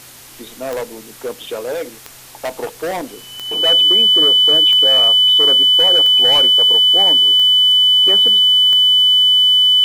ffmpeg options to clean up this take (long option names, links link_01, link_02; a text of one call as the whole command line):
ffmpeg -i in.wav -af "adeclick=threshold=4,bandreject=frequency=127.4:width_type=h:width=4,bandreject=frequency=254.8:width_type=h:width=4,bandreject=frequency=382.2:width_type=h:width=4,bandreject=frequency=509.6:width_type=h:width=4,bandreject=frequency=3000:width=30,afftdn=noise_reduction=22:noise_floor=-38" out.wav